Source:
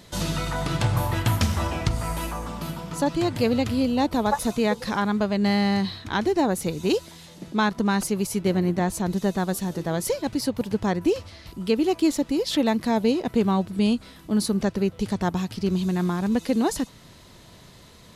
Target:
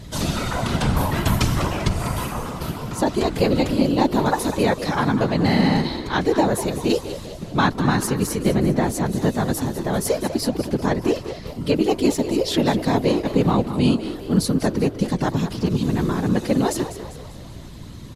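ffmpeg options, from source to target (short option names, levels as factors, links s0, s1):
-filter_complex "[0:a]aeval=exprs='val(0)+0.01*(sin(2*PI*60*n/s)+sin(2*PI*2*60*n/s)/2+sin(2*PI*3*60*n/s)/3+sin(2*PI*4*60*n/s)/4+sin(2*PI*5*60*n/s)/5)':c=same,afftfilt=real='hypot(re,im)*cos(2*PI*random(0))':imag='hypot(re,im)*sin(2*PI*random(1))':win_size=512:overlap=0.75,asplit=6[s0][s1][s2][s3][s4][s5];[s1]adelay=197,afreqshift=71,volume=0.251[s6];[s2]adelay=394,afreqshift=142,volume=0.117[s7];[s3]adelay=591,afreqshift=213,volume=0.0556[s8];[s4]adelay=788,afreqshift=284,volume=0.026[s9];[s5]adelay=985,afreqshift=355,volume=0.0123[s10];[s0][s6][s7][s8][s9][s10]amix=inputs=6:normalize=0,volume=2.82"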